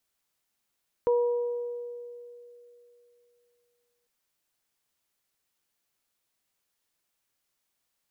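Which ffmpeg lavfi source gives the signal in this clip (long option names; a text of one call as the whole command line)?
ffmpeg -f lavfi -i "aevalsrc='0.106*pow(10,-3*t/3.02)*sin(2*PI*481*t)+0.0282*pow(10,-3*t/1.45)*sin(2*PI*962*t)':duration=3:sample_rate=44100" out.wav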